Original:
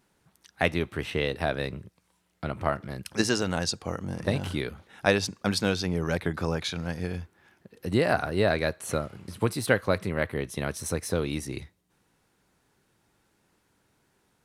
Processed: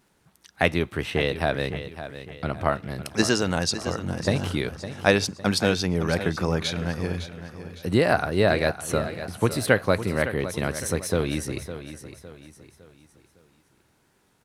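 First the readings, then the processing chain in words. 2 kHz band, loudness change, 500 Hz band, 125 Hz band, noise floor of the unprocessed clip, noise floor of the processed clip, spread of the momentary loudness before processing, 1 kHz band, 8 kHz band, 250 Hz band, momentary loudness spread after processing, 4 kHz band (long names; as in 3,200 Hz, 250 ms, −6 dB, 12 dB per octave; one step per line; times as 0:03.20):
+4.0 dB, +3.5 dB, +4.0 dB, +4.0 dB, −71 dBFS, −66 dBFS, 10 LU, +4.0 dB, +4.0 dB, +4.0 dB, 14 LU, +4.0 dB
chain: surface crackle 31 per second −58 dBFS
on a send: repeating echo 558 ms, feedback 40%, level −12 dB
on the sum: level +3.5 dB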